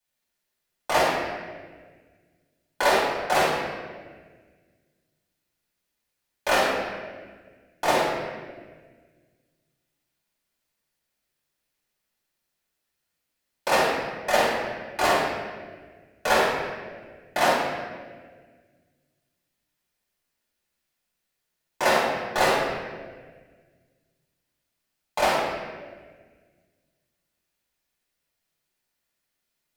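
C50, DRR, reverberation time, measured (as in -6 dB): -1.5 dB, -9.5 dB, 1.6 s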